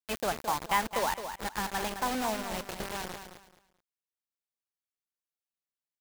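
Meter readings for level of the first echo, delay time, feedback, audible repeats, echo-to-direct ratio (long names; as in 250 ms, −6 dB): −9.0 dB, 216 ms, 24%, 3, −8.5 dB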